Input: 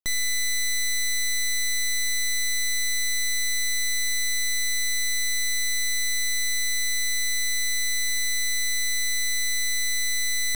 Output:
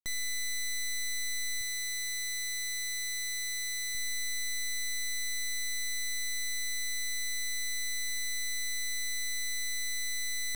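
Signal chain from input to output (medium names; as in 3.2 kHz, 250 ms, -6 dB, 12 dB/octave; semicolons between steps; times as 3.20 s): 1.61–3.95 s: bass shelf 260 Hz -5.5 dB; trim -9 dB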